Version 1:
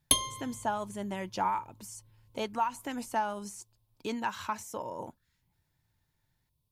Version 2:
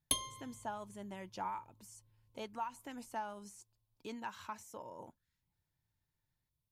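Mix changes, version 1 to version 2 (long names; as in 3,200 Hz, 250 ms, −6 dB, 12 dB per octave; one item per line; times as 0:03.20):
speech −10.5 dB
background −9.0 dB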